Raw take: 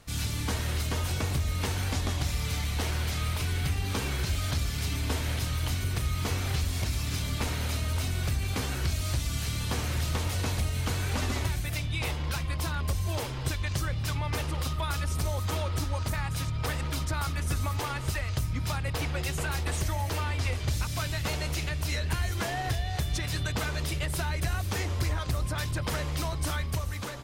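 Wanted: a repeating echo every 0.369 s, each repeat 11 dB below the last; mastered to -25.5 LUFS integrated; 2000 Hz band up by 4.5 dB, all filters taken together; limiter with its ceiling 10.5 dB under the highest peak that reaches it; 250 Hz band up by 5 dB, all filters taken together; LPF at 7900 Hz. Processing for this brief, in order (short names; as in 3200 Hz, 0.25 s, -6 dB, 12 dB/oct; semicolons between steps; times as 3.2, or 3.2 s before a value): LPF 7900 Hz; bell 250 Hz +7 dB; bell 2000 Hz +5.5 dB; limiter -26 dBFS; feedback echo 0.369 s, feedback 28%, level -11 dB; gain +8.5 dB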